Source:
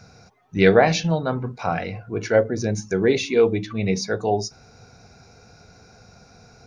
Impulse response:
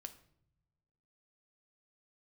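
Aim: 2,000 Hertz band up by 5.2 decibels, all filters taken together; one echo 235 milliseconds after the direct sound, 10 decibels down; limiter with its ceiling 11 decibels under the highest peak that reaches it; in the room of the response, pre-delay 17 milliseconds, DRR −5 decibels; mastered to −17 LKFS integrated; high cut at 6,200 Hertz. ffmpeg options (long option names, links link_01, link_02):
-filter_complex "[0:a]lowpass=6200,equalizer=frequency=2000:width_type=o:gain=6.5,alimiter=limit=-10.5dB:level=0:latency=1,aecho=1:1:235:0.316,asplit=2[link_01][link_02];[1:a]atrim=start_sample=2205,adelay=17[link_03];[link_02][link_03]afir=irnorm=-1:irlink=0,volume=10dB[link_04];[link_01][link_04]amix=inputs=2:normalize=0,volume=-0.5dB"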